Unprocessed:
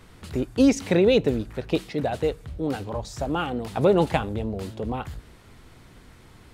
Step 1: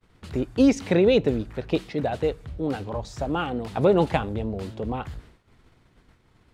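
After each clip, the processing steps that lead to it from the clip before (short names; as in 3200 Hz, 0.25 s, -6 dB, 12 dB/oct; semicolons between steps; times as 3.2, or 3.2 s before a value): expander -41 dBFS; high shelf 7900 Hz -11 dB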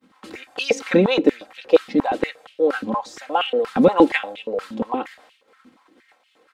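comb 3.8 ms, depth 65%; stepped high-pass 8.5 Hz 230–2800 Hz; gain +1.5 dB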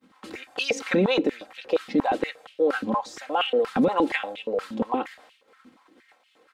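limiter -11.5 dBFS, peak gain reduction 10 dB; gain -1.5 dB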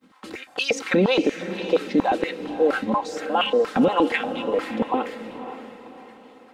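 diffused feedback echo 0.537 s, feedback 41%, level -11 dB; gain +2.5 dB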